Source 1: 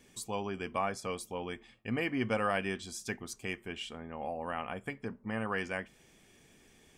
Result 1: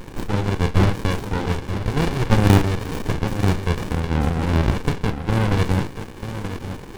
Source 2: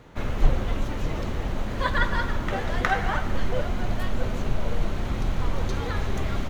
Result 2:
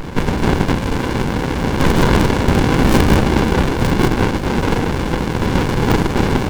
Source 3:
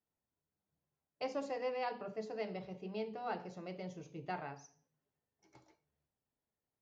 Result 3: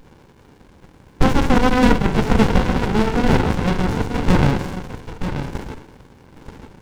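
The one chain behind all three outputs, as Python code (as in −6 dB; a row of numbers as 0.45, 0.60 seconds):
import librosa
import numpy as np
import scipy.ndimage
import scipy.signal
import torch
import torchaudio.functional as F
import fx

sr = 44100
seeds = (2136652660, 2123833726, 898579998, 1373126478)

p1 = fx.bin_compress(x, sr, power=0.6)
p2 = scipy.signal.sosfilt(scipy.signal.butter(4, 490.0, 'highpass', fs=sr, output='sos'), p1)
p3 = fx.notch(p2, sr, hz=4200.0, q=5.1)
p4 = fx.level_steps(p3, sr, step_db=10)
p5 = p3 + (p4 * librosa.db_to_amplitude(-3.0))
p6 = (np.mod(10.0 ** (13.5 / 20.0) * p5 + 1.0, 2.0) - 1.0) / 10.0 ** (13.5 / 20.0)
p7 = fx.doubler(p6, sr, ms=38.0, db=-9)
p8 = p7 + 10.0 ** (-9.5 / 20.0) * np.pad(p7, (int(932 * sr / 1000.0), 0))[:len(p7)]
p9 = fx.running_max(p8, sr, window=65)
y = p9 * 10.0 ** (-1.5 / 20.0) / np.max(np.abs(p9))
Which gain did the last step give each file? 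+14.0, +14.5, +26.0 decibels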